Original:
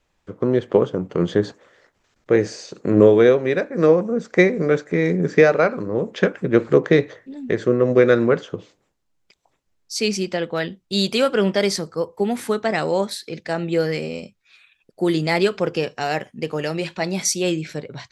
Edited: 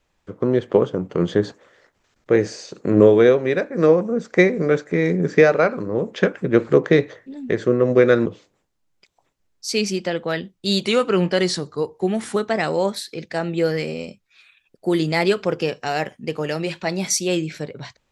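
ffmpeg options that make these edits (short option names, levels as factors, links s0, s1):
-filter_complex "[0:a]asplit=4[s0][s1][s2][s3];[s0]atrim=end=8.262[s4];[s1]atrim=start=8.528:end=11.104[s5];[s2]atrim=start=11.1:end=12.51,asetpts=PTS-STARTPTS,asetrate=40572,aresample=44100,atrim=end_sample=67588,asetpts=PTS-STARTPTS[s6];[s3]atrim=start=12.506[s7];[s4][s5]acrossfade=d=0.004:c1=hsin:c2=hsin[s8];[s8][s6]acrossfade=d=0.004:c1=hsin:c2=hsin[s9];[s9][s7]acrossfade=d=0.004:c1=hsin:c2=hsin"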